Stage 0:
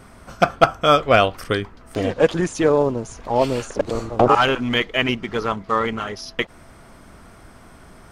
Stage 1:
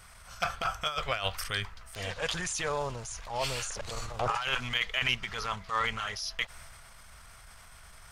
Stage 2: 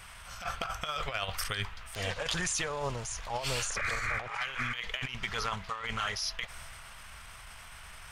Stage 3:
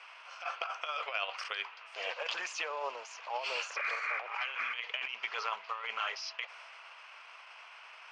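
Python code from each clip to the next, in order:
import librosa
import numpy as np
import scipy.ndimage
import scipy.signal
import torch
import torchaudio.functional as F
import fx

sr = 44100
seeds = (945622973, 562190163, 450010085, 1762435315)

y1 = fx.tone_stack(x, sr, knobs='10-0-10')
y1 = fx.transient(y1, sr, attack_db=-7, sustain_db=4)
y1 = fx.over_compress(y1, sr, threshold_db=-28.0, ratio=-0.5)
y2 = fx.spec_paint(y1, sr, seeds[0], shape='noise', start_s=3.76, length_s=1.01, low_hz=1100.0, high_hz=2500.0, level_db=-34.0)
y2 = fx.over_compress(y2, sr, threshold_db=-33.0, ratio=-0.5)
y2 = fx.dmg_noise_band(y2, sr, seeds[1], low_hz=860.0, high_hz=3200.0, level_db=-54.0)
y3 = fx.cabinet(y2, sr, low_hz=480.0, low_slope=24, high_hz=4900.0, hz=(1000.0, 1800.0, 2600.0, 3700.0), db=(3, -4, 7, -8))
y3 = y3 * 10.0 ** (-2.0 / 20.0)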